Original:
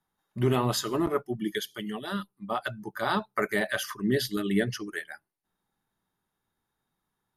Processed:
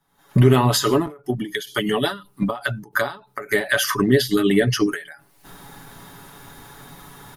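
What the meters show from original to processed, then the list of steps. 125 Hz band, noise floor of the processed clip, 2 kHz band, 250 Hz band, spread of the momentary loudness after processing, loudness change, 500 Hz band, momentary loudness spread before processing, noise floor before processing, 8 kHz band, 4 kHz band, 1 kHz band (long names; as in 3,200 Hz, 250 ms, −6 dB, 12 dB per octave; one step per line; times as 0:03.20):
+12.0 dB, −59 dBFS, +9.0 dB, +9.0 dB, 11 LU, +9.5 dB, +9.0 dB, 10 LU, −83 dBFS, +10.0 dB, +9.5 dB, +6.5 dB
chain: camcorder AGC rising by 58 dB per second
comb filter 7.1 ms, depth 56%
every ending faded ahead of time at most 150 dB per second
level +8 dB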